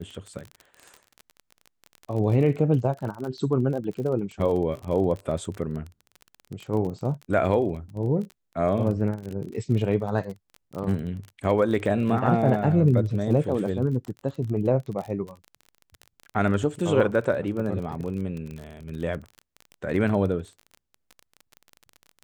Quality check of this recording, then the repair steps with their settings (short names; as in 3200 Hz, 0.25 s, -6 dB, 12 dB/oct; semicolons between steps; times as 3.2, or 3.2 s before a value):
crackle 31/s -32 dBFS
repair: de-click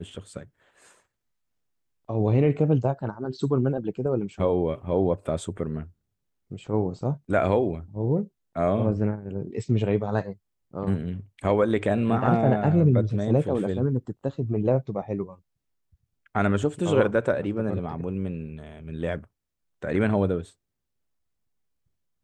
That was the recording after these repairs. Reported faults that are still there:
none